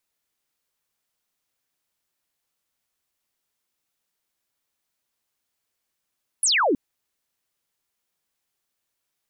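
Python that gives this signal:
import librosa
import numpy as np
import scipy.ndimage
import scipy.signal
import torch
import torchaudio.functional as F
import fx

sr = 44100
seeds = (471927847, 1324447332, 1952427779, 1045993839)

y = fx.laser_zap(sr, level_db=-17.0, start_hz=11000.0, end_hz=240.0, length_s=0.32, wave='sine')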